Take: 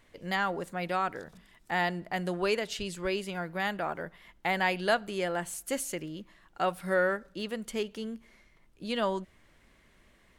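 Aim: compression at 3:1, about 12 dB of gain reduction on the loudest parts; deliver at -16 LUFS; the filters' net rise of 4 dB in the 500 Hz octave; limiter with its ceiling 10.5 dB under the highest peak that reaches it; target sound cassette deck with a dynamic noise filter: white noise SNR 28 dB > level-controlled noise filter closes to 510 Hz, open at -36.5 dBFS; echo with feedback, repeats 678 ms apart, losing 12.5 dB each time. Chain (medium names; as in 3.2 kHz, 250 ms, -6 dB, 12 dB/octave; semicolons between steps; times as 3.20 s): peaking EQ 500 Hz +5 dB; compression 3:1, threshold -36 dBFS; peak limiter -32 dBFS; feedback delay 678 ms, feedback 24%, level -12.5 dB; white noise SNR 28 dB; level-controlled noise filter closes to 510 Hz, open at -36.5 dBFS; trim +26 dB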